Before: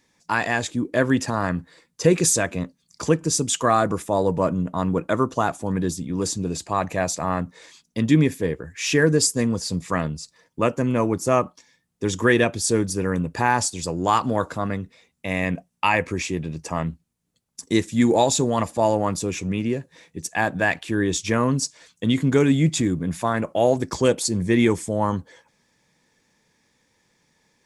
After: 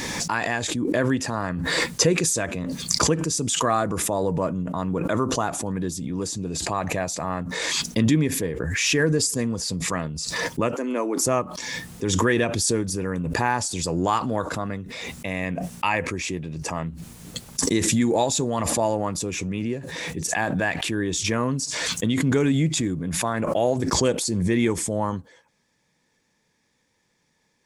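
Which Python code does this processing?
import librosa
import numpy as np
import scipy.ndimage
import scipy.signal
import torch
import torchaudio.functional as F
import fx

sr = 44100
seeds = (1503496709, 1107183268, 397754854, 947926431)

y = fx.steep_highpass(x, sr, hz=250.0, slope=36, at=(10.75, 11.26))
y = fx.pre_swell(y, sr, db_per_s=22.0)
y = F.gain(torch.from_numpy(y), -4.0).numpy()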